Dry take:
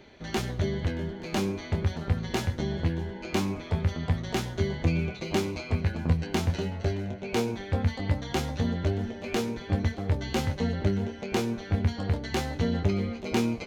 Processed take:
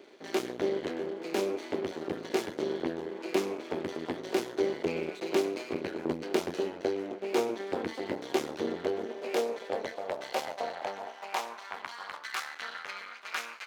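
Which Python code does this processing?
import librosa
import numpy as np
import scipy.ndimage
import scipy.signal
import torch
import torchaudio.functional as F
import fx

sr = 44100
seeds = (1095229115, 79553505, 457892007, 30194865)

y = np.maximum(x, 0.0)
y = fx.filter_sweep_highpass(y, sr, from_hz=360.0, to_hz=1400.0, start_s=8.81, end_s=12.65, q=2.8)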